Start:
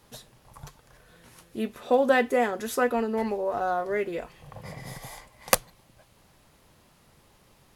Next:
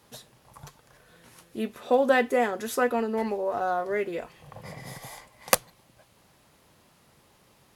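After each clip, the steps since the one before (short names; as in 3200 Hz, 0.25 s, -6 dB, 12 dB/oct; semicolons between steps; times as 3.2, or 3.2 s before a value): HPF 100 Hz 6 dB/oct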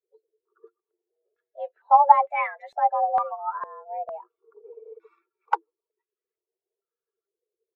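per-bin expansion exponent 2; frequency shift +310 Hz; stepped low-pass 2.2 Hz 510–2100 Hz; gain -1 dB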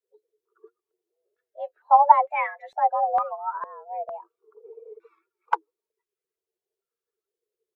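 vibrato 4.4 Hz 66 cents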